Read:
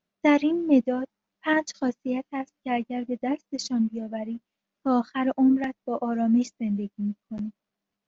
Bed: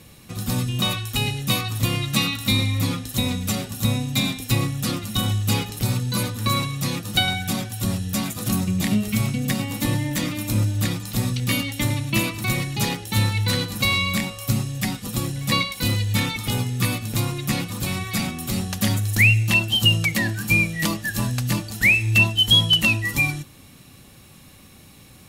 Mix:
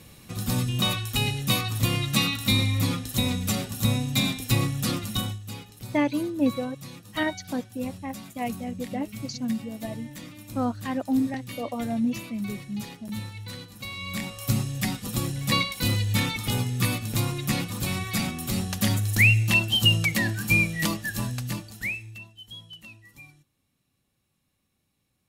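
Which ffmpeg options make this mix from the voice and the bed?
-filter_complex "[0:a]adelay=5700,volume=0.631[s0];[1:a]volume=3.98,afade=t=out:st=5.08:d=0.31:silence=0.188365,afade=t=in:st=13.96:d=0.53:silence=0.199526,afade=t=out:st=20.78:d=1.41:silence=0.0562341[s1];[s0][s1]amix=inputs=2:normalize=0"

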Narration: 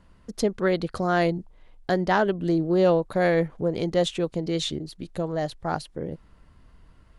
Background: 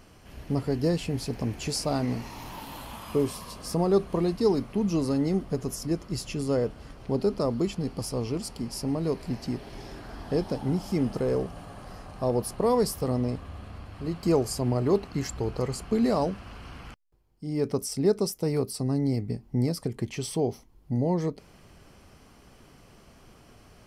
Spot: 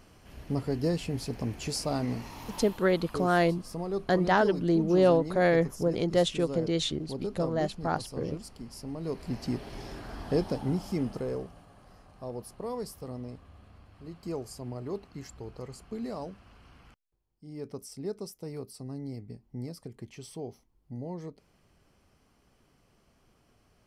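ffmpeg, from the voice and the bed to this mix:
-filter_complex "[0:a]adelay=2200,volume=0.794[s0];[1:a]volume=2.24,afade=t=out:st=2.58:d=0.23:silence=0.446684,afade=t=in:st=8.93:d=0.62:silence=0.316228,afade=t=out:st=10.3:d=1.36:silence=0.237137[s1];[s0][s1]amix=inputs=2:normalize=0"

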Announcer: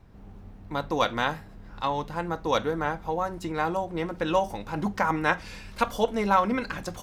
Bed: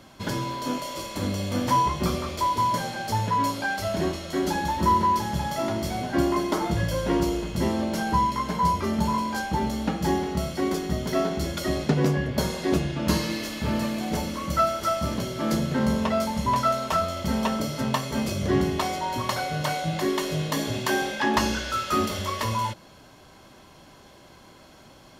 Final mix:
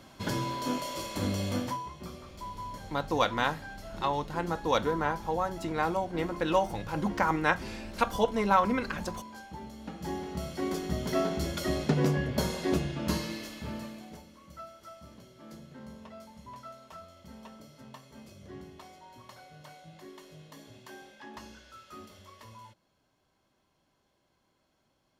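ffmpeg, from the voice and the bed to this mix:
-filter_complex "[0:a]adelay=2200,volume=0.794[s0];[1:a]volume=3.35,afade=t=out:st=1.5:d=0.28:silence=0.188365,afade=t=in:st=9.77:d=1.34:silence=0.211349,afade=t=out:st=12.57:d=1.67:silence=0.105925[s1];[s0][s1]amix=inputs=2:normalize=0"

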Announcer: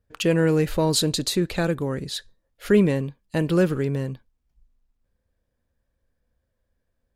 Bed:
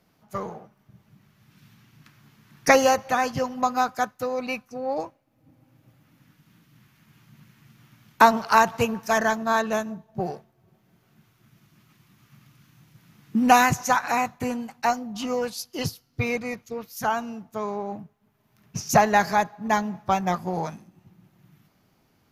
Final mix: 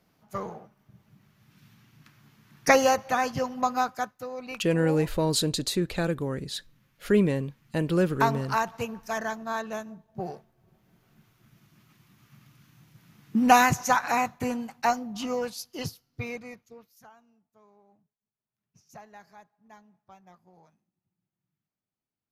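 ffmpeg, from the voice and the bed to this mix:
-filter_complex "[0:a]adelay=4400,volume=0.631[s0];[1:a]volume=1.78,afade=t=out:st=3.75:d=0.49:silence=0.473151,afade=t=in:st=9.93:d=0.94:silence=0.421697,afade=t=out:st=15:d=2.1:silence=0.0375837[s1];[s0][s1]amix=inputs=2:normalize=0"

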